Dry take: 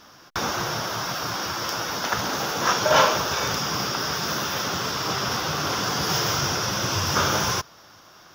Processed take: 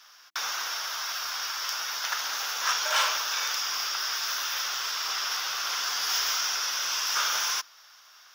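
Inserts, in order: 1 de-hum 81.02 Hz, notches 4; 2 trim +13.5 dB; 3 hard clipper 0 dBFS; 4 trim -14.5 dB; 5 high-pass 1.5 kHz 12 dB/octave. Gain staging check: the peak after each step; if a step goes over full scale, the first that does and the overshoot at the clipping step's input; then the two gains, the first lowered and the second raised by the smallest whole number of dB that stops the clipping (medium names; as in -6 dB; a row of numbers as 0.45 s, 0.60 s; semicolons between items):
-3.5 dBFS, +10.0 dBFS, 0.0 dBFS, -14.5 dBFS, -12.5 dBFS; step 2, 10.0 dB; step 2 +3.5 dB, step 4 -4.5 dB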